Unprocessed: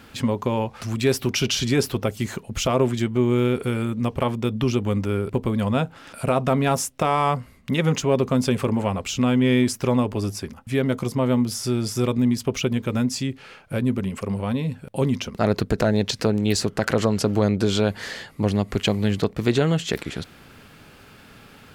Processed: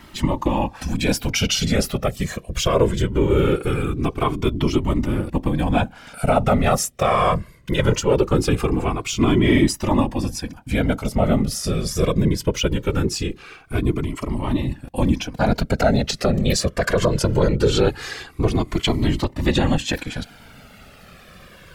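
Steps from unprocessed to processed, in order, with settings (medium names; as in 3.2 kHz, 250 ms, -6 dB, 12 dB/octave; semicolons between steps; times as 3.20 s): whisper effect; Shepard-style flanger falling 0.21 Hz; trim +7 dB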